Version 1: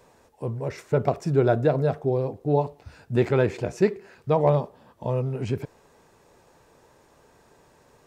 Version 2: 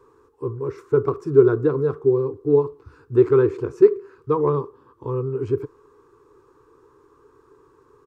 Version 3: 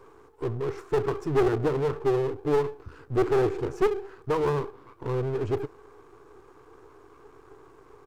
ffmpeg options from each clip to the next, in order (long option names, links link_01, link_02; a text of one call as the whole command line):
ffmpeg -i in.wav -af "firequalizer=gain_entry='entry(140,0);entry(190,-16);entry(290,6);entry(420,11);entry(630,-21);entry(1100,10);entry(1900,-10)':delay=0.05:min_phase=1,volume=-1dB" out.wav
ffmpeg -i in.wav -af "aeval=exprs='if(lt(val(0),0),0.251*val(0),val(0))':channel_layout=same,aeval=exprs='(tanh(20*val(0)+0.55)-tanh(0.55))/20':channel_layout=same,volume=8.5dB" out.wav